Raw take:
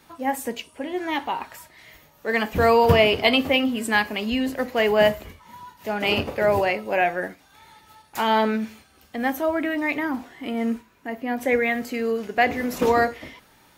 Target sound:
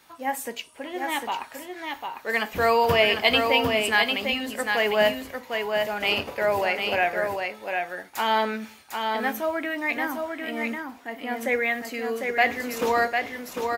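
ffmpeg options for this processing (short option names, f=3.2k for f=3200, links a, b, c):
-af "lowshelf=f=420:g=-11,aecho=1:1:751:0.596"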